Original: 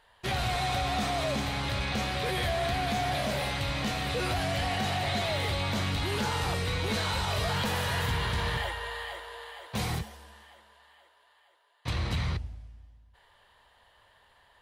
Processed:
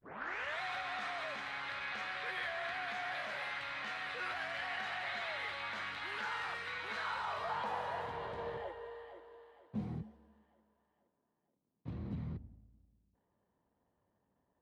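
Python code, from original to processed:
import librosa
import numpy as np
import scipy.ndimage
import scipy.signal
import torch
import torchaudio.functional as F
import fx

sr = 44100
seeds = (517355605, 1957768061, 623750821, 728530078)

y = fx.tape_start_head(x, sr, length_s=0.61)
y = fx.backlash(y, sr, play_db=-58.5)
y = fx.filter_sweep_bandpass(y, sr, from_hz=1600.0, to_hz=220.0, start_s=6.81, end_s=9.76, q=1.9)
y = y * 10.0 ** (-1.5 / 20.0)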